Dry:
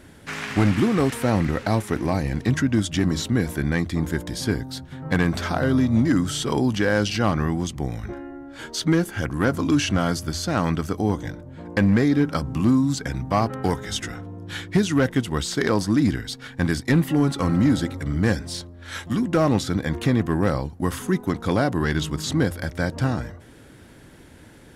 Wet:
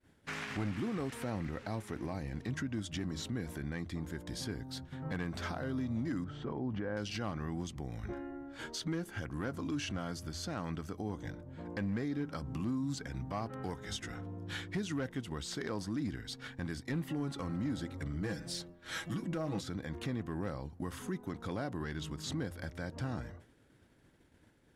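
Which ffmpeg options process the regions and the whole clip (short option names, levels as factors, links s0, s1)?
-filter_complex "[0:a]asettb=1/sr,asplit=3[s0][s1][s2];[s0]atrim=end=6.244[s3];[s1]atrim=start=6.24:end=6.97,asetpts=PTS-STARTPTS,afade=t=in:d=0.004:c=qsin,afade=t=out:st=0.726:d=0.004:c=qsin,lowpass=1400,acompressor=threshold=0.0631:ratio=4:attack=3.2:release=140:knee=1:detection=peak[s4];[s2]atrim=start=6.966[s5];[s3][s4]acrossfade=d=0.004:c1=hsin:c2=qsin[s6];[s6][s5]acrossfade=d=0.004:c1=qsin:c2=hsin,asettb=1/sr,asplit=3[s7][s8][s9];[s7]atrim=end=18.214[s10];[s8]atrim=start=18.21:end=19.61,asetpts=PTS-STARTPTS,afade=t=in:d=0.004:c=qsin,afade=t=out:st=1.396:d=0.004:c=qsin,highshelf=f=10000:g=5,aecho=1:1:6.2:0.94,atrim=end_sample=61740,bandreject=f=249.1:t=h:w=4,bandreject=f=498.2:t=h:w=4,bandreject=f=747.3:t=h:w=4,bandreject=f=996.4:t=h:w=4,bandreject=f=1245.5:t=h:w=4,bandreject=f=1494.6:t=h:w=4,bandreject=f=1743.7:t=h:w=4,bandreject=f=1992.8:t=h:w=4,bandreject=f=2241.9:t=h:w=4,bandreject=f=2491:t=h:w=4,bandreject=f=2740.1:t=h:w=4[s11];[s9]atrim=start=19.606[s12];[s10][s11]acrossfade=d=0.004:c1=hsin:c2=qsin[s13];[s13][s12]acrossfade=d=0.004:c1=qsin:c2=hsin,agate=range=0.0224:threshold=0.0126:ratio=3:detection=peak,highshelf=f=8800:g=-5.5,alimiter=limit=0.0794:level=0:latency=1:release=283,volume=0.447"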